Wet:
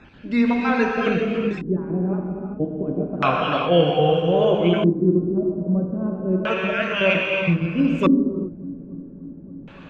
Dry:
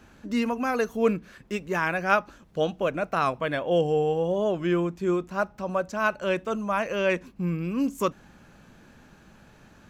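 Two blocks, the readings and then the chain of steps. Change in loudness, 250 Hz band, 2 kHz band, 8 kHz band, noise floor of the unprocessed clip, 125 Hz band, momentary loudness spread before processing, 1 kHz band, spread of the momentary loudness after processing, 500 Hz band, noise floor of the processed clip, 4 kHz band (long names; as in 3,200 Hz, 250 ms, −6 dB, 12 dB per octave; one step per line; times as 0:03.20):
+6.0 dB, +9.0 dB, +4.0 dB, can't be measured, −54 dBFS, +9.5 dB, 6 LU, +3.0 dB, 15 LU, +5.0 dB, −41 dBFS, +9.5 dB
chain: time-frequency cells dropped at random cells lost 31%
parametric band 120 Hz +3 dB 2.5 octaves
echo machine with several playback heads 288 ms, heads second and third, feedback 65%, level −24 dB
reverb whose tail is shaped and stops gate 430 ms flat, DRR −1 dB
auto-filter low-pass square 0.31 Hz 290–3,100 Hz
level +3 dB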